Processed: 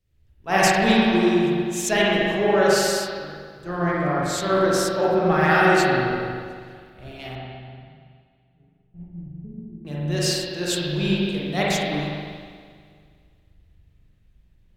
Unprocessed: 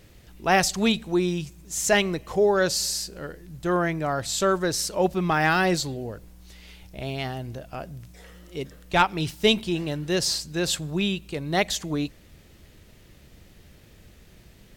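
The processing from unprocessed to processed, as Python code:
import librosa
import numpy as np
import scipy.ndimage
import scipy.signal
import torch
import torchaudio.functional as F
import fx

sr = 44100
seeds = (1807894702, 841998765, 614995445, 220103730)

y = fx.ladder_lowpass(x, sr, hz=240.0, resonance_pct=40, at=(7.35, 9.85))
y = fx.rev_spring(y, sr, rt60_s=3.2, pass_ms=(40, 47), chirp_ms=30, drr_db=-6.5)
y = fx.band_widen(y, sr, depth_pct=70)
y = y * 10.0 ** (-3.5 / 20.0)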